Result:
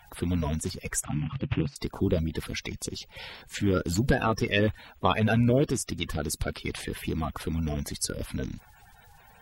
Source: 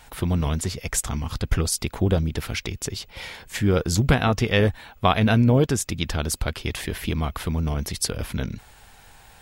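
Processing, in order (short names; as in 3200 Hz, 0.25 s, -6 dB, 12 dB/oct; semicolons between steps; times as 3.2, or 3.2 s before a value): bin magnitudes rounded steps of 30 dB; 1.04–1.76 speaker cabinet 100–3000 Hz, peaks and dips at 140 Hz +9 dB, 300 Hz +6 dB, 430 Hz -9 dB, 2700 Hz +7 dB; gain -4.5 dB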